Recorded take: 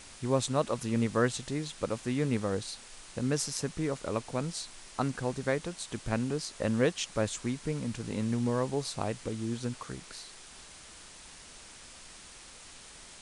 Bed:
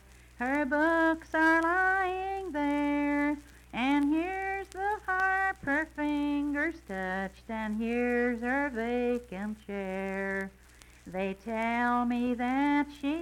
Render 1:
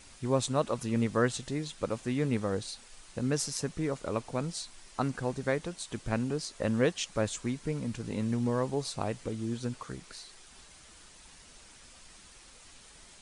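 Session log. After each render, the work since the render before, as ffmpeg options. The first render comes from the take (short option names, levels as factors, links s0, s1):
-af "afftdn=nr=6:nf=-51"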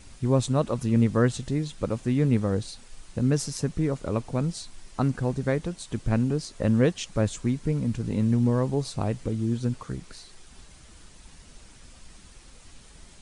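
-af "lowshelf=f=310:g=11.5"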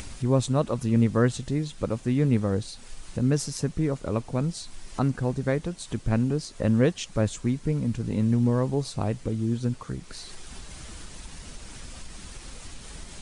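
-af "acompressor=mode=upward:threshold=0.0316:ratio=2.5"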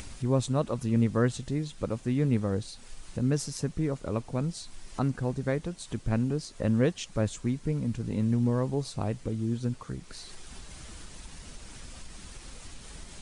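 -af "volume=0.668"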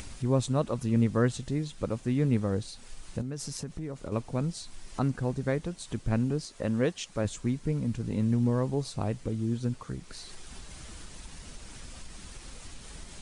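-filter_complex "[0:a]asettb=1/sr,asplit=3[s0][s1][s2];[s0]atrim=end=3.214[s3];[s1]atrim=start=3.21:end=4.12,asetpts=PTS-STARTPTS,afade=t=in:d=0.004:c=qsin,afade=t=out:st=0.906:d=0.004:c=qsin,acompressor=threshold=0.0251:ratio=6:attack=3.2:release=140:knee=1:detection=peak[s4];[s2]atrim=start=4.116[s5];[s3][s4]acrossfade=d=0.004:c1=hsin:c2=qsin[s6];[s6][s5]acrossfade=d=0.004:c1=qsin:c2=hsin,asettb=1/sr,asplit=3[s7][s8][s9];[s7]atrim=end=6.464[s10];[s8]atrim=start=6.46:end=7.25,asetpts=PTS-STARTPTS,afade=t=in:d=0.004:c=qsin,afade=t=out:st=0.786:d=0.004:c=qsin,lowshelf=f=190:g=-7.5[s11];[s9]atrim=start=7.246[s12];[s10][s11]acrossfade=d=0.004:c1=hsin:c2=qsin[s13];[s13][s12]acrossfade=d=0.004:c1=qsin:c2=hsin"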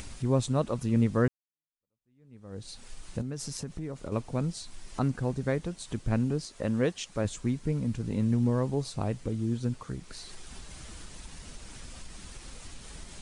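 -filter_complex "[0:a]asplit=2[s0][s1];[s0]atrim=end=1.28,asetpts=PTS-STARTPTS,afade=t=out:st=1.276:d=0.004:c=hsin[s2];[s1]atrim=start=1.28,asetpts=PTS-STARTPTS,afade=t=in:d=1.43:c=exp[s3];[s2][s3]concat=n=2:v=0:a=1"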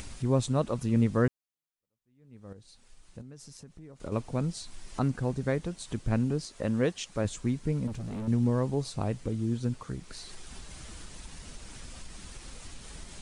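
-filter_complex "[0:a]asettb=1/sr,asplit=3[s0][s1][s2];[s0]atrim=end=7.874[s3];[s1]atrim=start=7.87:end=8.28,asetpts=PTS-STARTPTS,afade=t=in:d=0.004:c=qsin,afade=t=out:st=0.406:d=0.004:c=qsin,asoftclip=type=hard:threshold=0.0224[s4];[s2]atrim=start=8.276[s5];[s3][s4]acrossfade=d=0.004:c1=hsin:c2=qsin[s6];[s6][s5]acrossfade=d=0.004:c1=qsin:c2=hsin,asplit=3[s7][s8][s9];[s7]atrim=end=2.532[s10];[s8]atrim=start=2.528:end=4.002,asetpts=PTS-STARTPTS,volume=0.266[s11];[s9]atrim=start=3.998[s12];[s10][s11]acrossfade=d=0.004:c1=hsin:c2=hsin[s13];[s13][s12]acrossfade=d=0.004:c1=hsin:c2=hsin"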